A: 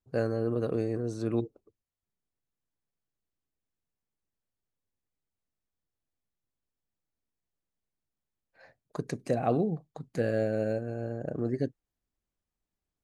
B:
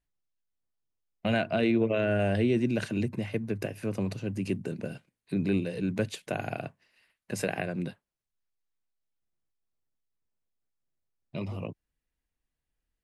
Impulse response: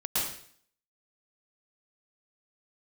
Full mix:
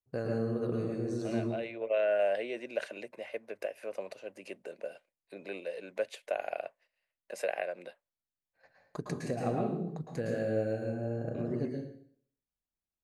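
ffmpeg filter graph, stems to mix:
-filter_complex "[0:a]agate=range=0.282:threshold=0.002:ratio=16:detection=peak,acompressor=threshold=0.0251:ratio=2,volume=0.501,asplit=3[s0][s1][s2];[s1]volume=0.631[s3];[1:a]agate=range=0.282:threshold=0.00112:ratio=16:detection=peak,adynamicequalizer=threshold=0.00398:dfrequency=2100:dqfactor=1.2:tfrequency=2100:tqfactor=1.2:attack=5:release=100:ratio=0.375:range=3:mode=boostabove:tftype=bell,highpass=f=570:t=q:w=4.2,volume=0.335[s4];[s2]apad=whole_len=574837[s5];[s4][s5]sidechaincompress=threshold=0.00631:ratio=8:attack=11:release=674[s6];[2:a]atrim=start_sample=2205[s7];[s3][s7]afir=irnorm=-1:irlink=0[s8];[s0][s6][s8]amix=inputs=3:normalize=0"

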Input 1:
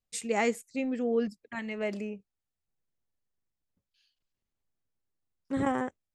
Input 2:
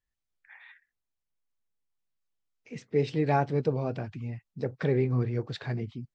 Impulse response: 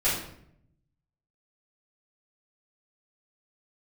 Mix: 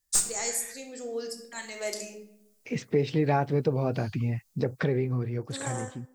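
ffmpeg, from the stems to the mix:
-filter_complex "[0:a]aexciter=amount=11.8:drive=5.8:freq=4100,highpass=370,aeval=exprs='clip(val(0),-1,0.266)':c=same,volume=0.299,asplit=2[s0][s1];[s1]volume=0.224[s2];[1:a]acompressor=threshold=0.0141:ratio=2.5,volume=1.33[s3];[2:a]atrim=start_sample=2205[s4];[s2][s4]afir=irnorm=-1:irlink=0[s5];[s0][s3][s5]amix=inputs=3:normalize=0,dynaudnorm=f=200:g=13:m=2.66"

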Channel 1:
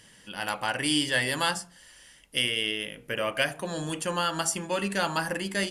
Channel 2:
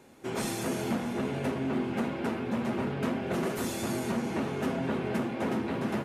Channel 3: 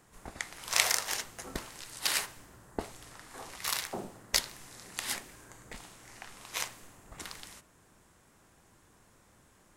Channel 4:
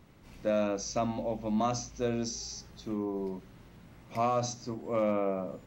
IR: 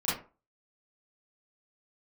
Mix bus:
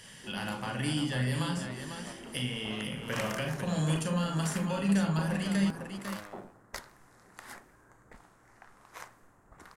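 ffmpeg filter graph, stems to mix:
-filter_complex "[0:a]equalizer=f=350:w=4.5:g=-14,acrossover=split=340[s0][s1];[s1]acompressor=threshold=0.01:ratio=8[s2];[s0][s2]amix=inputs=2:normalize=0,volume=1.12,asplit=3[s3][s4][s5];[s4]volume=0.355[s6];[s5]volume=0.562[s7];[1:a]lowpass=f=2600:p=1,asoftclip=type=tanh:threshold=0.0299,volume=0.266[s8];[2:a]highshelf=f=2100:t=q:w=1.5:g=-10,adelay=2400,volume=0.473[s9];[3:a]acrusher=bits=3:mix=0:aa=0.5,adelay=1100,volume=0.133[s10];[4:a]atrim=start_sample=2205[s11];[s6][s11]afir=irnorm=-1:irlink=0[s12];[s7]aecho=0:1:500:1[s13];[s3][s8][s9][s10][s12][s13]amix=inputs=6:normalize=0"

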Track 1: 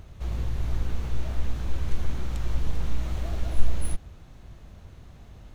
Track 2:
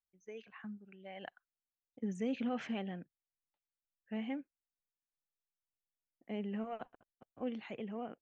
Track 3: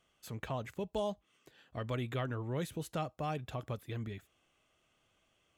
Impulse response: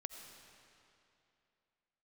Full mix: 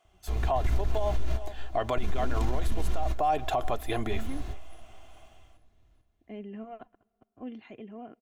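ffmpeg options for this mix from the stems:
-filter_complex "[0:a]adelay=50,volume=0.596,asplit=3[s0][s1][s2];[s1]volume=0.188[s3];[s2]volume=0.15[s4];[1:a]lowshelf=f=290:g=9,volume=0.562,asplit=3[s5][s6][s7];[s6]volume=0.0794[s8];[2:a]equalizer=f=760:t=o:w=0.68:g=13.5,alimiter=level_in=1.06:limit=0.0631:level=0:latency=1,volume=0.944,highpass=f=330:p=1,volume=1.12,asplit=2[s9][s10];[s10]volume=0.224[s11];[s7]apad=whole_len=246913[s12];[s0][s12]sidechaingate=range=0.0355:threshold=0.00126:ratio=16:detection=peak[s13];[s13][s9]amix=inputs=2:normalize=0,dynaudnorm=f=400:g=3:m=4.47,alimiter=limit=0.251:level=0:latency=1:release=405,volume=1[s14];[3:a]atrim=start_sample=2205[s15];[s3][s8]amix=inputs=2:normalize=0[s16];[s16][s15]afir=irnorm=-1:irlink=0[s17];[s4][s11]amix=inputs=2:normalize=0,aecho=0:1:414|828|1242|1656|2070:1|0.36|0.13|0.0467|0.0168[s18];[s5][s14][s17][s18]amix=inputs=4:normalize=0,aecho=1:1:2.9:0.46,alimiter=limit=0.133:level=0:latency=1:release=78"

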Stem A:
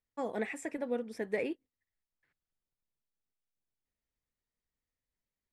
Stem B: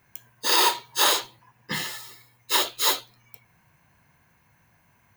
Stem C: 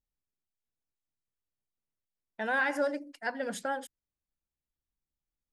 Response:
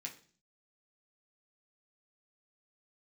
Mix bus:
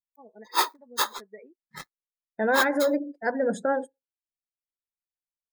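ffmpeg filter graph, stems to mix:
-filter_complex "[0:a]aecho=1:1:4.7:0.43,volume=0.168[s0];[1:a]acrusher=bits=3:mix=0:aa=0.5,aeval=exprs='val(0)*pow(10,-26*(0.5-0.5*cos(2*PI*5*n/s))/20)':c=same,volume=0.708[s1];[2:a]lowshelf=f=700:t=q:w=1.5:g=9,alimiter=limit=0.126:level=0:latency=1:release=38,volume=1.06,asplit=2[s2][s3];[s3]volume=0.075[s4];[3:a]atrim=start_sample=2205[s5];[s4][s5]afir=irnorm=-1:irlink=0[s6];[s0][s1][s2][s6]amix=inputs=4:normalize=0,bandreject=f=2900:w=5.2,afftdn=nr=32:nf=-43,equalizer=f=1200:w=1.4:g=8.5"

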